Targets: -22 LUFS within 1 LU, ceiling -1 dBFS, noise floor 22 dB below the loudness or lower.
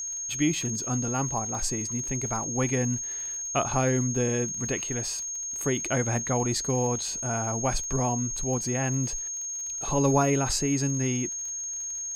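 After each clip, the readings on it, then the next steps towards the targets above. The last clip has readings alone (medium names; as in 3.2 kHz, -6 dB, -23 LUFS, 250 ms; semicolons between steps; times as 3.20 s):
tick rate 46 per s; steady tone 6.5 kHz; tone level -31 dBFS; loudness -27.0 LUFS; peak level -11.0 dBFS; loudness target -22.0 LUFS
-> de-click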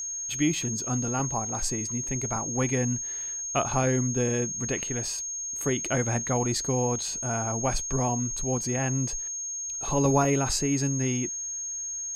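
tick rate 0.49 per s; steady tone 6.5 kHz; tone level -31 dBFS
-> band-stop 6.5 kHz, Q 30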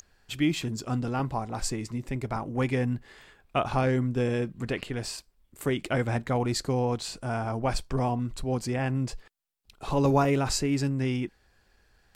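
steady tone not found; loudness -29.0 LUFS; peak level -11.5 dBFS; loudness target -22.0 LUFS
-> trim +7 dB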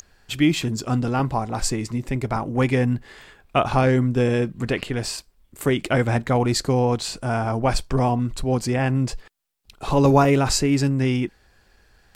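loudness -22.0 LUFS; peak level -4.5 dBFS; noise floor -59 dBFS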